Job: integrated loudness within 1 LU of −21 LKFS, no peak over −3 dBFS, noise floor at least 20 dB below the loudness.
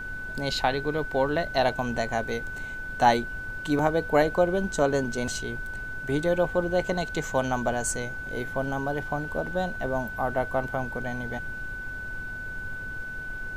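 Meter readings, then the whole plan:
interfering tone 1,500 Hz; level of the tone −34 dBFS; background noise floor −36 dBFS; target noise floor −48 dBFS; integrated loudness −28.0 LKFS; sample peak −8.5 dBFS; target loudness −21.0 LKFS
→ notch filter 1,500 Hz, Q 30
noise reduction from a noise print 12 dB
level +7 dB
brickwall limiter −3 dBFS

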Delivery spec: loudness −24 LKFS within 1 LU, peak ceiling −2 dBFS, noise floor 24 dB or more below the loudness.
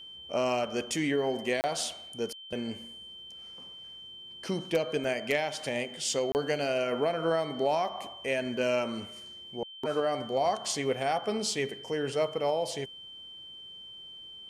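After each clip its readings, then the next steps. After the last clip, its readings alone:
number of dropouts 2; longest dropout 29 ms; interfering tone 3,100 Hz; level of the tone −44 dBFS; integrated loudness −31.0 LKFS; sample peak −15.0 dBFS; target loudness −24.0 LKFS
→ repair the gap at 0:01.61/0:06.32, 29 ms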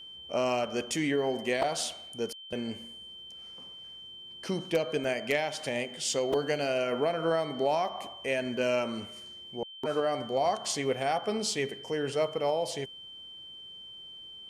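number of dropouts 0; interfering tone 3,100 Hz; level of the tone −44 dBFS
→ notch filter 3,100 Hz, Q 30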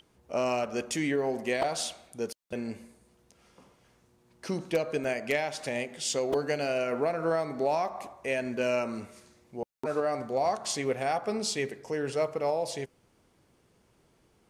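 interfering tone none found; integrated loudness −31.0 LKFS; sample peak −15.0 dBFS; target loudness −24.0 LKFS
→ level +7 dB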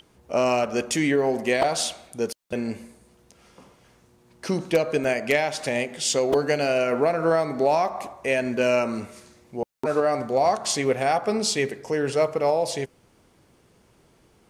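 integrated loudness −24.0 LKFS; sample peak −8.0 dBFS; background noise floor −60 dBFS

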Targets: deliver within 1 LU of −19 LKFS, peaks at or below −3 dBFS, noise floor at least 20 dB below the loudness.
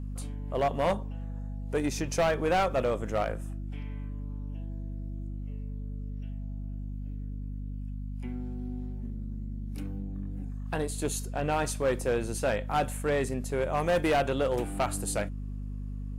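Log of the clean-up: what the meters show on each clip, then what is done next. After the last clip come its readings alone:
share of clipped samples 1.2%; peaks flattened at −21.0 dBFS; mains hum 50 Hz; hum harmonics up to 250 Hz; level of the hum −34 dBFS; integrated loudness −32.0 LKFS; sample peak −21.0 dBFS; target loudness −19.0 LKFS
→ clipped peaks rebuilt −21 dBFS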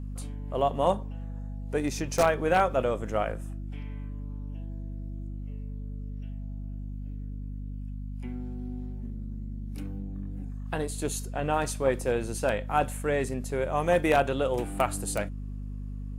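share of clipped samples 0.0%; mains hum 50 Hz; hum harmonics up to 250 Hz; level of the hum −34 dBFS
→ mains-hum notches 50/100/150/200/250 Hz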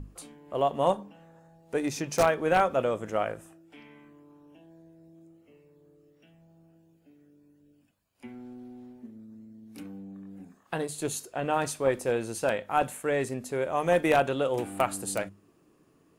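mains hum none found; integrated loudness −28.5 LKFS; sample peak −11.0 dBFS; target loudness −19.0 LKFS
→ level +9.5 dB
brickwall limiter −3 dBFS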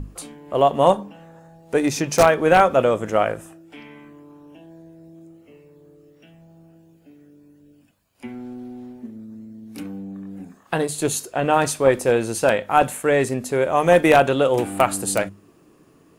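integrated loudness −19.0 LKFS; sample peak −3.0 dBFS; background noise floor −55 dBFS

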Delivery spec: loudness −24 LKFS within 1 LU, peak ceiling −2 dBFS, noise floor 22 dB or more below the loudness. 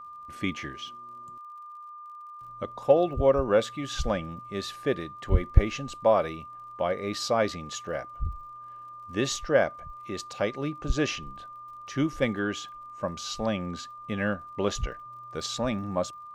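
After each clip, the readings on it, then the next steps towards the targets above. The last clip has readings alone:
crackle rate 49 per second; interfering tone 1,200 Hz; level of the tone −41 dBFS; integrated loudness −29.0 LKFS; sample peak −4.0 dBFS; target loudness −24.0 LKFS
→ click removal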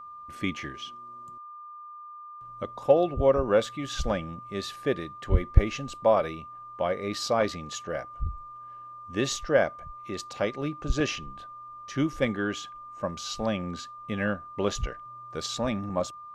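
crackle rate 0.12 per second; interfering tone 1,200 Hz; level of the tone −41 dBFS
→ notch filter 1,200 Hz, Q 30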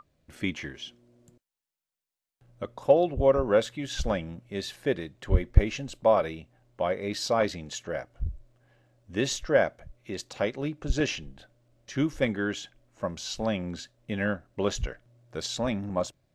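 interfering tone none found; integrated loudness −29.0 LKFS; sample peak −4.0 dBFS; target loudness −24.0 LKFS
→ level +5 dB
brickwall limiter −2 dBFS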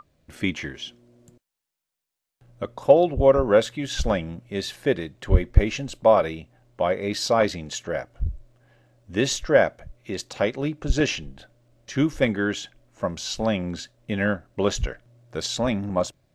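integrated loudness −24.0 LKFS; sample peak −2.0 dBFS; background noise floor −85 dBFS

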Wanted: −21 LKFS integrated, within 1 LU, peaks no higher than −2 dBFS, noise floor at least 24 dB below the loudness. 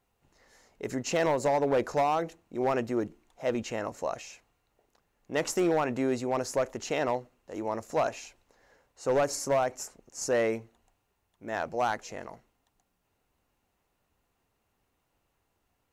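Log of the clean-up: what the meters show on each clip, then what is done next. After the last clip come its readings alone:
share of clipped samples 0.9%; peaks flattened at −20.0 dBFS; integrated loudness −30.0 LKFS; sample peak −20.0 dBFS; target loudness −21.0 LKFS
→ clipped peaks rebuilt −20 dBFS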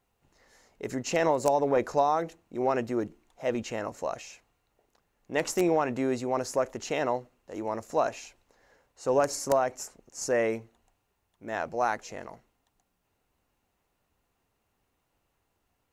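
share of clipped samples 0.0%; integrated loudness −29.5 LKFS; sample peak −11.0 dBFS; target loudness −21.0 LKFS
→ level +8.5 dB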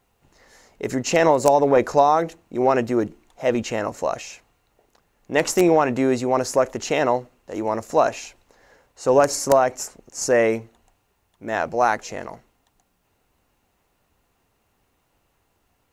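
integrated loudness −21.0 LKFS; sample peak −2.5 dBFS; background noise floor −69 dBFS

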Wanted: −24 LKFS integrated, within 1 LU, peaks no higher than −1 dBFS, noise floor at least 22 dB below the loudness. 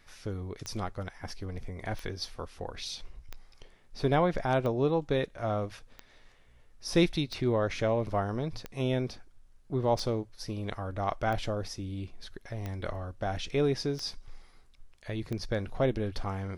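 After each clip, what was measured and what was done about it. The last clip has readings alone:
number of clicks 12; integrated loudness −32.5 LKFS; sample peak −13.0 dBFS; target loudness −24.0 LKFS
→ click removal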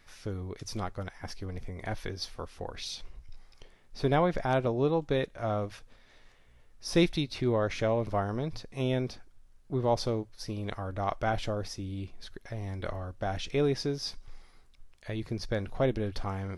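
number of clicks 0; integrated loudness −32.5 LKFS; sample peak −13.0 dBFS; target loudness −24.0 LKFS
→ level +8.5 dB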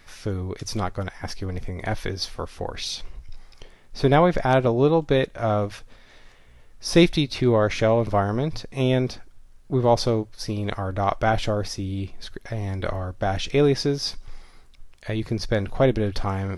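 integrated loudness −24.0 LKFS; sample peak −4.5 dBFS; background noise floor −50 dBFS

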